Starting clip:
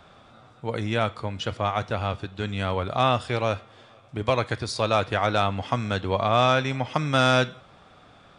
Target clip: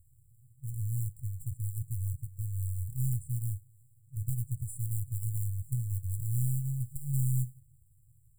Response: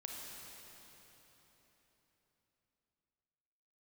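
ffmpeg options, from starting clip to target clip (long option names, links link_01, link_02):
-af "aeval=exprs='if(lt(val(0),0),0.447*val(0),val(0))':channel_layout=same,acrusher=bits=4:mode=log:mix=0:aa=0.000001,afftfilt=real='re*(1-between(b*sr/4096,140,7200))':imag='im*(1-between(b*sr/4096,140,7200))':win_size=4096:overlap=0.75"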